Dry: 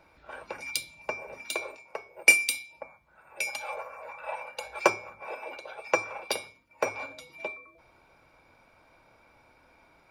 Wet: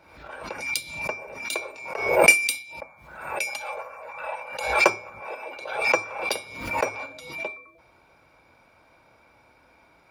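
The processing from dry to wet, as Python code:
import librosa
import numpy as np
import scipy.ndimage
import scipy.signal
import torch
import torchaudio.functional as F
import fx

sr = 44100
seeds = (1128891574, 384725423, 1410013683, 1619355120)

y = scipy.signal.sosfilt(scipy.signal.butter(2, 44.0, 'highpass', fs=sr, output='sos'), x)
y = fx.pre_swell(y, sr, db_per_s=64.0)
y = y * librosa.db_to_amplitude(2.5)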